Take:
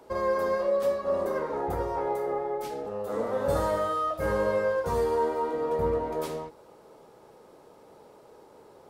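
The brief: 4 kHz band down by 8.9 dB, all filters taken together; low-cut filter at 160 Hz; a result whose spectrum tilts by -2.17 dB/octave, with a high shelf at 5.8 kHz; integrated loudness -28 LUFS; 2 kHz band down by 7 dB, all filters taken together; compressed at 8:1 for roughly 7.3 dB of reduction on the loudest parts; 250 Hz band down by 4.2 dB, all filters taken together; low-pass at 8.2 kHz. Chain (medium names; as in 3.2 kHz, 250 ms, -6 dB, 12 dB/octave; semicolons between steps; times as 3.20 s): high-pass 160 Hz; low-pass 8.2 kHz; peaking EQ 250 Hz -5 dB; peaking EQ 2 kHz -8 dB; peaking EQ 4 kHz -7 dB; treble shelf 5.8 kHz -4.5 dB; compression 8:1, threshold -31 dBFS; trim +7 dB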